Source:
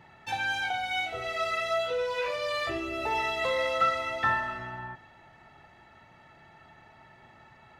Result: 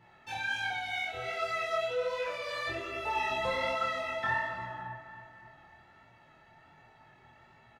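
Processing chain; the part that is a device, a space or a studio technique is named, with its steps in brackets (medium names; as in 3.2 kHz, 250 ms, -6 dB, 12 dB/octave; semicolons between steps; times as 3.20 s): double-tracked vocal (doubling 26 ms -3 dB; chorus 1.3 Hz, delay 17 ms, depth 7.8 ms); 3.30–3.75 s: bass shelf 340 Hz +10.5 dB; two-band feedback delay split 2.1 kHz, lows 276 ms, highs 96 ms, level -12 dB; trim -3.5 dB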